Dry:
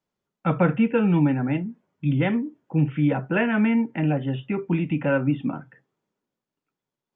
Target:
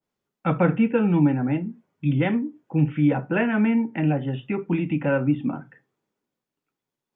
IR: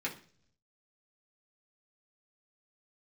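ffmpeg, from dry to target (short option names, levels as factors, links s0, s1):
-filter_complex "[0:a]asplit=2[s0][s1];[1:a]atrim=start_sample=2205,afade=t=out:st=0.16:d=0.01,atrim=end_sample=7497[s2];[s1][s2]afir=irnorm=-1:irlink=0,volume=0.178[s3];[s0][s3]amix=inputs=2:normalize=0,adynamicequalizer=threshold=0.0126:dfrequency=1500:dqfactor=0.7:tfrequency=1500:tqfactor=0.7:attack=5:release=100:ratio=0.375:range=3:mode=cutabove:tftype=highshelf"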